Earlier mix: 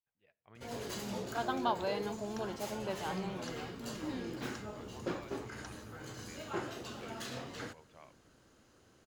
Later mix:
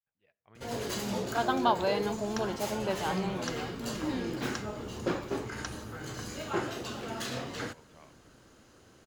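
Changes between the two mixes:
first sound +6.5 dB
second sound +12.0 dB

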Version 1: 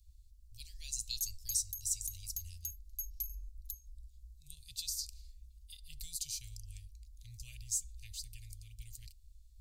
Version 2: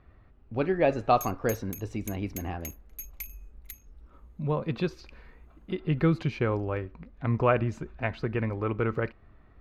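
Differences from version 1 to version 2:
speech: add high-frequency loss of the air 300 metres
master: remove inverse Chebyshev band-stop filter 190–1,500 Hz, stop band 60 dB

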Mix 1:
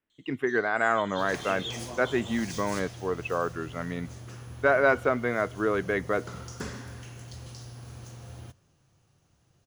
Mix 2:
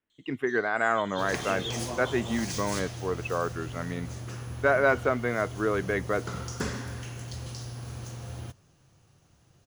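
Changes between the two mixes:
second sound +6.5 dB
reverb: off

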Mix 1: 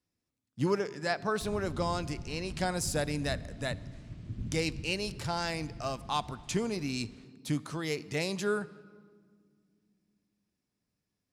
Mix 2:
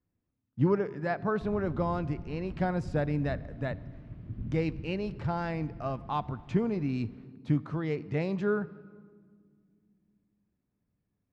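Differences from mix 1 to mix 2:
speech: add low-shelf EQ 230 Hz +8.5 dB
master: add low-pass filter 1,800 Hz 12 dB per octave

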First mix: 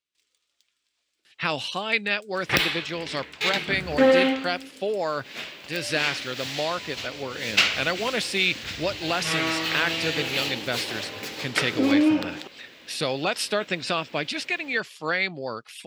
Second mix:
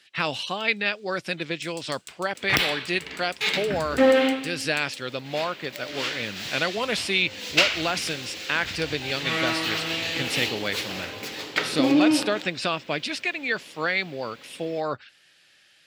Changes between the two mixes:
speech: entry −1.25 s
first sound +12.0 dB

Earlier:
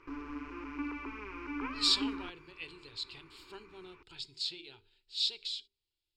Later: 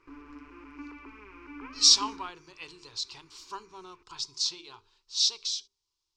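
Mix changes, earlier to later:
speech: remove phaser with its sweep stopped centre 2,600 Hz, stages 4
background −5.5 dB

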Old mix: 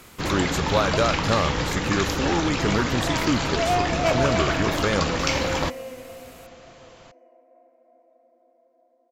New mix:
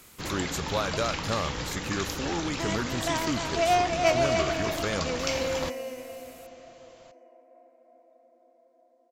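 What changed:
speech −7.5 dB
first sound −9.5 dB
master: add high-shelf EQ 4,000 Hz +7.5 dB

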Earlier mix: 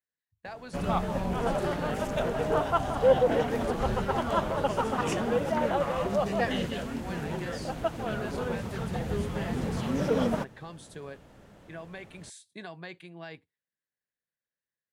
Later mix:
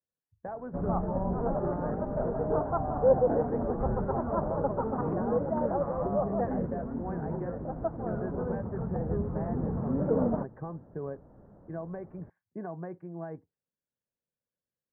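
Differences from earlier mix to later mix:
speech +6.5 dB
master: add Bessel low-pass filter 780 Hz, order 8

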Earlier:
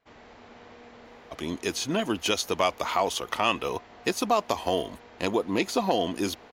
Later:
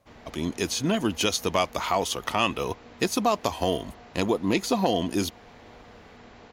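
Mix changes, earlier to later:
speech: entry −1.05 s
master: add bass and treble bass +7 dB, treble +3 dB

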